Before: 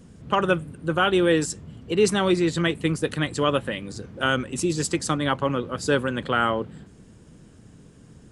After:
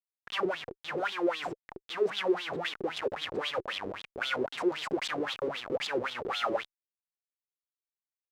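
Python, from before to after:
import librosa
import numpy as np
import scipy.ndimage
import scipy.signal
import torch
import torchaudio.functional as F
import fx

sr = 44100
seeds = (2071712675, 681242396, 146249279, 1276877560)

y = x + 10.0 ** (-48.0 / 20.0) * np.sin(2.0 * np.pi * 750.0 * np.arange(len(x)) / sr)
y = fx.schmitt(y, sr, flips_db=-32.0)
y = fx.wah_lfo(y, sr, hz=3.8, low_hz=370.0, high_hz=3600.0, q=6.4)
y = F.gain(torch.from_numpy(y), 6.0).numpy()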